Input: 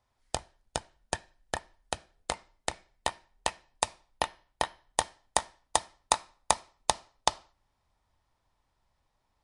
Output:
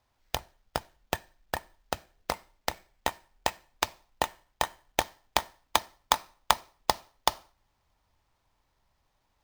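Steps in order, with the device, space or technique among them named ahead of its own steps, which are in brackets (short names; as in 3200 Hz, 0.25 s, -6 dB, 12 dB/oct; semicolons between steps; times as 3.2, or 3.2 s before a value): early companding sampler (sample-rate reducer 10000 Hz, jitter 0%; companded quantiser 8-bit); gain +1.5 dB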